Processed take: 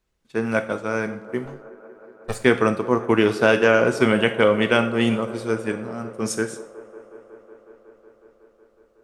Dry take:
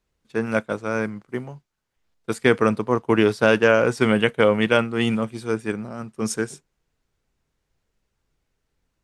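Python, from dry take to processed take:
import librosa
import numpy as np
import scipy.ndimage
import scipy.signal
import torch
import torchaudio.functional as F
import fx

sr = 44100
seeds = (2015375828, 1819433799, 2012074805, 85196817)

y = fx.lower_of_two(x, sr, delay_ms=1.7, at=(1.45, 2.35))
y = fx.echo_wet_bandpass(y, sr, ms=184, feedback_pct=84, hz=610.0, wet_db=-17)
y = fx.rev_double_slope(y, sr, seeds[0], early_s=0.5, late_s=2.4, knee_db=-27, drr_db=7.5)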